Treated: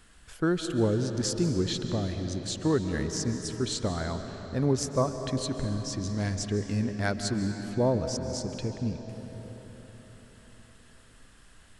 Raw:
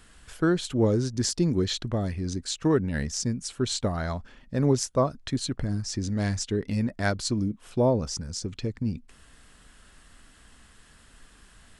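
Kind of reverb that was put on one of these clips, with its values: digital reverb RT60 4.8 s, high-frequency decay 0.7×, pre-delay 0.105 s, DRR 6.5 dB; gain -3 dB

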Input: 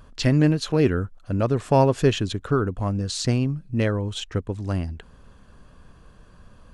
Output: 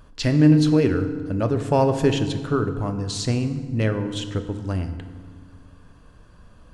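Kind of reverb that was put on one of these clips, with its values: FDN reverb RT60 1.7 s, low-frequency decay 1.5×, high-frequency decay 0.65×, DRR 7.5 dB; gain -1 dB

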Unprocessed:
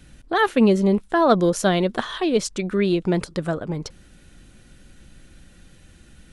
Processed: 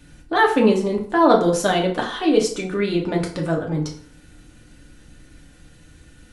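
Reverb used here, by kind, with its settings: FDN reverb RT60 0.55 s, low-frequency decay 0.9×, high-frequency decay 0.7×, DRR -1 dB; gain -1.5 dB

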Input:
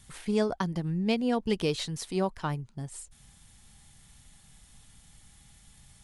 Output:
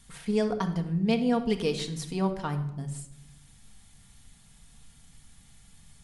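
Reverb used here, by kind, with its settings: shoebox room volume 2700 m³, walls furnished, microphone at 1.7 m; gain -1.5 dB

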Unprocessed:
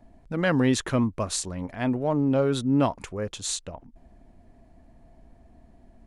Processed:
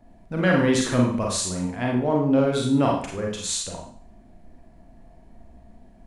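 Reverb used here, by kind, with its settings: Schroeder reverb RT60 0.53 s, combs from 33 ms, DRR -1.5 dB

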